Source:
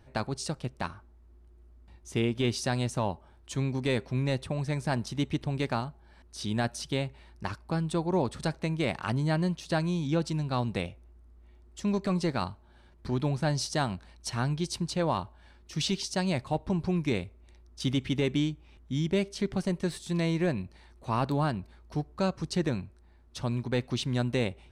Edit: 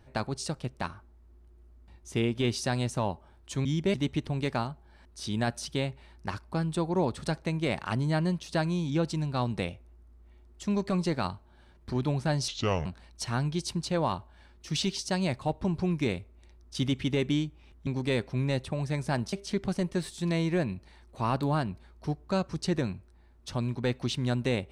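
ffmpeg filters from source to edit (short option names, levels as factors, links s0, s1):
-filter_complex "[0:a]asplit=7[s0][s1][s2][s3][s4][s5][s6];[s0]atrim=end=3.652[s7];[s1]atrim=start=18.918:end=19.212[s8];[s2]atrim=start=5.108:end=13.654[s9];[s3]atrim=start=13.65:end=13.91,asetpts=PTS-STARTPTS,asetrate=30429,aresample=44100,atrim=end_sample=16617,asetpts=PTS-STARTPTS[s10];[s4]atrim=start=13.906:end=18.922[s11];[s5]atrim=start=3.648:end=5.112[s12];[s6]atrim=start=19.208[s13];[s7][s8]acrossfade=d=0.004:c1=hsin:c2=hsin[s14];[s14][s9]acrossfade=d=0.004:c1=hsin:c2=hsin[s15];[s15][s10]acrossfade=d=0.004:c1=hsin:c2=hsin[s16];[s16][s11]acrossfade=d=0.004:c1=hsin:c2=hsin[s17];[s17][s12]acrossfade=d=0.004:c1=hsin:c2=hsin[s18];[s18][s13]acrossfade=d=0.004:c1=hsin:c2=hsin"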